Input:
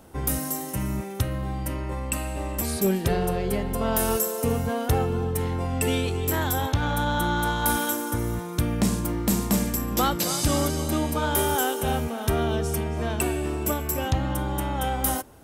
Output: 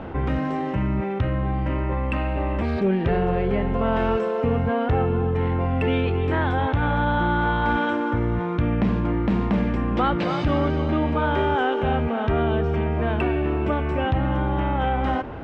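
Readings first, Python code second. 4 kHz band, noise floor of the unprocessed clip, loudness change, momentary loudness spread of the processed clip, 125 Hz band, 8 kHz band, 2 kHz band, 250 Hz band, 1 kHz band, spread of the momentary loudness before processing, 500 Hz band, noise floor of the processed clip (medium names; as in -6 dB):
-4.5 dB, -34 dBFS, +2.5 dB, 3 LU, +3.5 dB, under -30 dB, +3.5 dB, +4.0 dB, +4.0 dB, 6 LU, +4.0 dB, -26 dBFS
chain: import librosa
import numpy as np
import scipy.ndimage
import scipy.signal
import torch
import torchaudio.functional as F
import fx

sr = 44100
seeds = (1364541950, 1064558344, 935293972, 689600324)

y = scipy.signal.sosfilt(scipy.signal.butter(4, 2700.0, 'lowpass', fs=sr, output='sos'), x)
y = fx.env_flatten(y, sr, amount_pct=50)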